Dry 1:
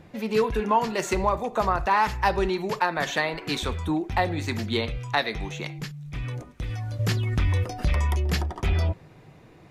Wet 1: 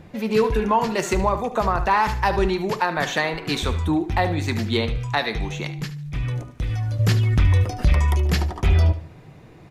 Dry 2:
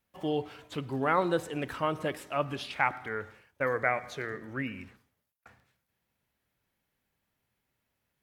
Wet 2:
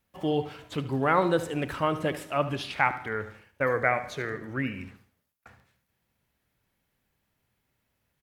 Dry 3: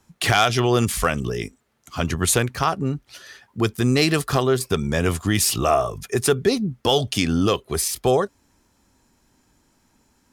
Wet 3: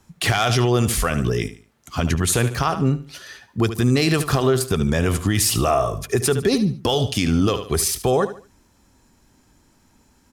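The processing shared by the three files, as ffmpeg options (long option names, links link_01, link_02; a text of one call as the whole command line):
ffmpeg -i in.wav -af "lowshelf=frequency=180:gain=4,aecho=1:1:74|148|222:0.2|0.0619|0.0192,alimiter=limit=-12dB:level=0:latency=1:release=65,volume=3dB" out.wav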